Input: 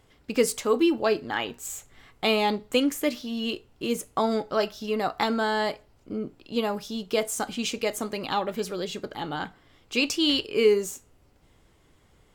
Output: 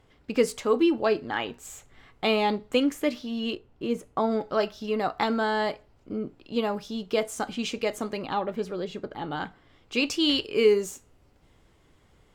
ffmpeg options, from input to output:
-af "asetnsamples=n=441:p=0,asendcmd='3.55 lowpass f 1400;4.41 lowpass f 3700;8.22 lowpass f 1500;9.31 lowpass f 3900;10.11 lowpass f 7100',lowpass=f=3500:p=1"

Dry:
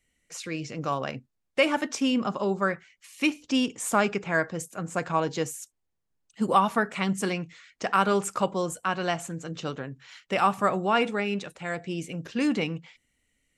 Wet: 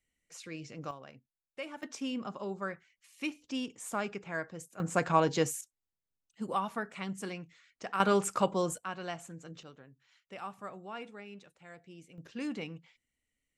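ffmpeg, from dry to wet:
-af "asetnsamples=n=441:p=0,asendcmd='0.91 volume volume -19dB;1.83 volume volume -11.5dB;4.8 volume volume 0dB;5.61 volume volume -11.5dB;8 volume volume -2.5dB;8.78 volume volume -11.5dB;9.63 volume volume -19.5dB;12.18 volume volume -12dB',volume=0.316"

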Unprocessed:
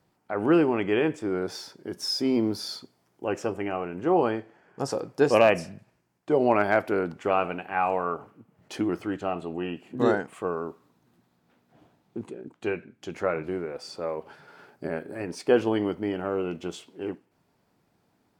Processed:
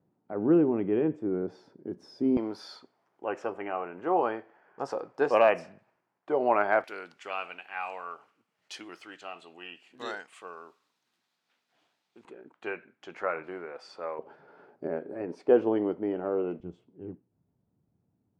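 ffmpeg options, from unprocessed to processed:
-af "asetnsamples=n=441:p=0,asendcmd='2.37 bandpass f 1000;6.84 bandpass f 4000;12.25 bandpass f 1300;14.19 bandpass f 470;16.6 bandpass f 100',bandpass=f=240:t=q:w=0.8:csg=0"

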